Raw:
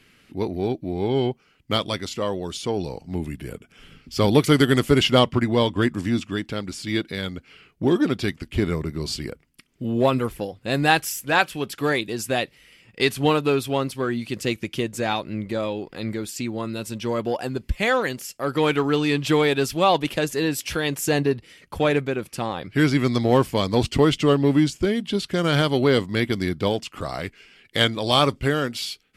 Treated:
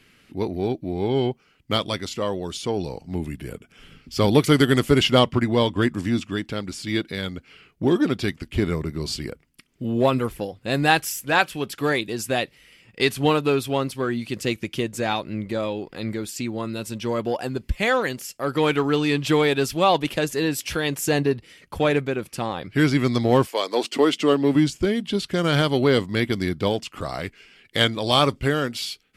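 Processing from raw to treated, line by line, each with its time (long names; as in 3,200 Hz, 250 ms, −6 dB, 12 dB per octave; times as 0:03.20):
0:23.45–0:24.54: high-pass filter 450 Hz → 150 Hz 24 dB per octave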